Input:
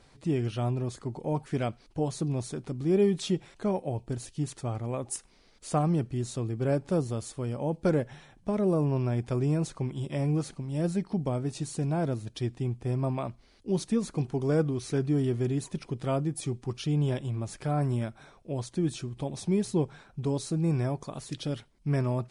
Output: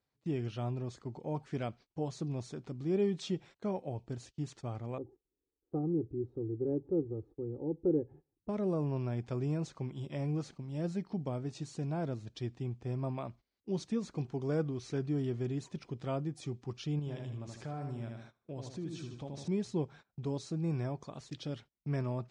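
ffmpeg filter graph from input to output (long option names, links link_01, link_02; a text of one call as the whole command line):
ffmpeg -i in.wav -filter_complex "[0:a]asettb=1/sr,asplit=3[link_01][link_02][link_03];[link_01]atrim=end=4.984[link_04];[link_02]atrim=start=4.98:end=8.49,asetpts=PTS-STARTPTS,afade=type=in:duration=0.004:curve=qsin,afade=type=out:start_time=3.506:duration=0.004:curve=qsin,lowpass=frequency=330:width_type=q:width=1.7,equalizer=frequency=130:width=7.4:gain=-11.5,aecho=1:1:2.4:0.78,atrim=end_sample=154791[link_05];[link_03]atrim=start=8.486[link_06];[link_04][link_05]acrossfade=duration=0.004:curve1=hsin:curve2=qsin[link_07];[link_07][link_06]acrossfade=duration=0.004:curve1=qsin:curve2=hsin,asettb=1/sr,asplit=3[link_08][link_09][link_10];[link_08]atrim=end=16.994[link_11];[link_09]atrim=start=16.99:end=19.48,asetpts=PTS-STARTPTS,afade=type=in:duration=0.004:curve=qsin,afade=type=out:start_time=2.486:duration=0.004:curve=qsin,aecho=1:1:77|154|231|308|385:0.531|0.212|0.0849|0.034|0.0136,atrim=end_sample=109809,acompressor=threshold=-33dB:ratio=2:attack=3.2:release=140:knee=1:detection=peak[link_12];[link_10]atrim=start=19.476[link_13];[link_11][link_12]acrossfade=duration=0.004:curve1=hsin:curve2=qsin[link_14];[link_14][link_13]acrossfade=duration=0.004:curve1=qsin:curve2=hsin,lowpass=frequency=6900:width=0.5412,lowpass=frequency=6900:width=1.3066,agate=range=-20dB:threshold=-45dB:ratio=16:detection=peak,highpass=57,volume=-7dB" out.wav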